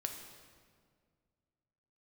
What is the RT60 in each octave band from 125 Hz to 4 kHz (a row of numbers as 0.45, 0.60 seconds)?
2.6, 2.4, 2.1, 1.8, 1.5, 1.3 seconds